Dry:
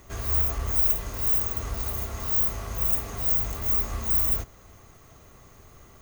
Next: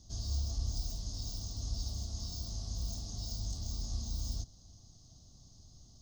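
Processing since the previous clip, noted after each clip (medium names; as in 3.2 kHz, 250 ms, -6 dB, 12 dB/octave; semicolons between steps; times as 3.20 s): FFT filter 150 Hz 0 dB, 280 Hz -4 dB, 430 Hz -18 dB, 730 Hz -10 dB, 1.2 kHz -23 dB, 2.3 kHz -29 dB, 3.4 kHz -3 dB, 5.1 kHz +12 dB, 12 kHz -25 dB; trim -4.5 dB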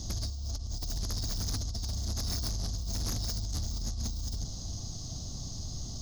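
compressor with a negative ratio -44 dBFS, ratio -1; sine folder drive 9 dB, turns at -28.5 dBFS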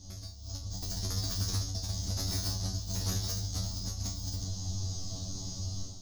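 level rider gain up to 11 dB; feedback comb 94 Hz, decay 0.32 s, harmonics all, mix 100%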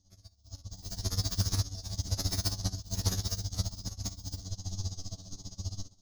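overload inside the chain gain 26.5 dB; tremolo 15 Hz, depth 58%; upward expansion 2.5:1, over -48 dBFS; trim +8 dB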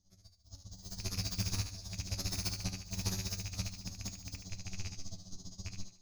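rattle on loud lows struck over -32 dBFS, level -30 dBFS; thinning echo 74 ms, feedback 41%, high-pass 370 Hz, level -7.5 dB; on a send at -11.5 dB: reverberation RT60 0.25 s, pre-delay 5 ms; on the sum: trim -5.5 dB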